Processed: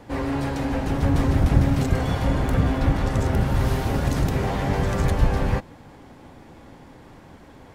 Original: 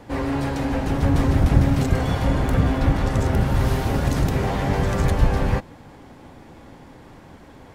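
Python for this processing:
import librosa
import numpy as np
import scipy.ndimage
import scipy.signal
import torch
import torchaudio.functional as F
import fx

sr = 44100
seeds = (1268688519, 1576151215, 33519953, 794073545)

y = x * librosa.db_to_amplitude(-1.5)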